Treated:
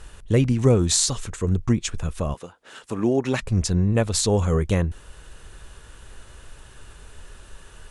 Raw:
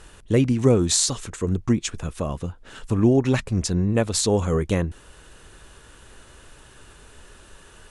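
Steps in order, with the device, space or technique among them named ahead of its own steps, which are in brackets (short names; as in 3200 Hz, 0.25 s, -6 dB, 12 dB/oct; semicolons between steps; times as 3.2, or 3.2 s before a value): 2.33–3.41 HPF 410 Hz -> 190 Hz 12 dB/oct; low shelf boost with a cut just above (low shelf 83 Hz +8 dB; bell 290 Hz -3.5 dB 0.77 oct)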